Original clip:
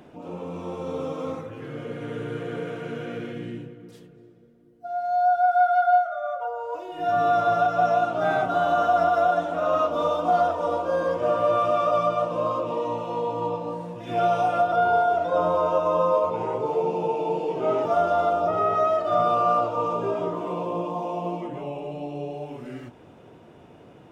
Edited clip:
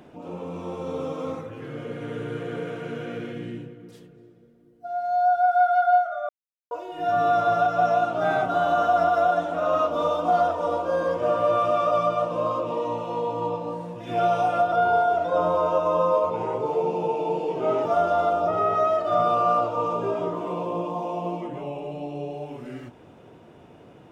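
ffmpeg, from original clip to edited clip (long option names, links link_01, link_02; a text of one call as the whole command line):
ffmpeg -i in.wav -filter_complex "[0:a]asplit=3[link_01][link_02][link_03];[link_01]atrim=end=6.29,asetpts=PTS-STARTPTS,afade=type=out:start_time=6.286:duration=0.004:curve=hsin[link_04];[link_02]atrim=start=6.29:end=6.71,asetpts=PTS-STARTPTS,volume=0[link_05];[link_03]atrim=start=6.71,asetpts=PTS-STARTPTS,afade=type=in:duration=0.004:curve=hsin[link_06];[link_04][link_05][link_06]concat=n=3:v=0:a=1" out.wav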